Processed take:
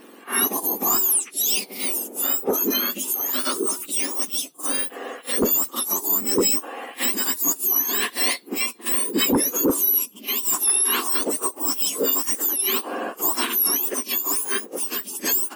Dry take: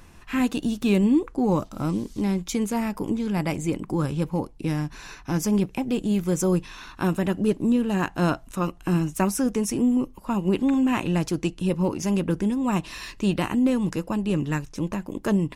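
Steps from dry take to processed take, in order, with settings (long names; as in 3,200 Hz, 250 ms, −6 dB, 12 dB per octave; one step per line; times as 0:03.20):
frequency axis turned over on the octave scale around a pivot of 1,700 Hz
sine wavefolder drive 8 dB, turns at −10 dBFS
echo ahead of the sound 44 ms −17 dB
level −3.5 dB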